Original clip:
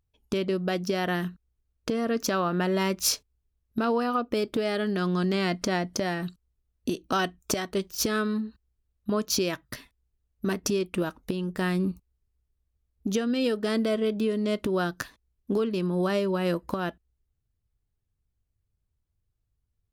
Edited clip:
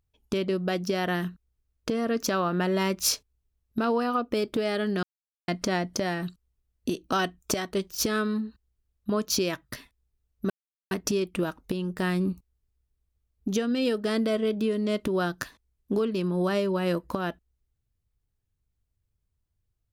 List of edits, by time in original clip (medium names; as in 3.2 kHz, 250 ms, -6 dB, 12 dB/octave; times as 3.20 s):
5.03–5.48 s: mute
10.50 s: insert silence 0.41 s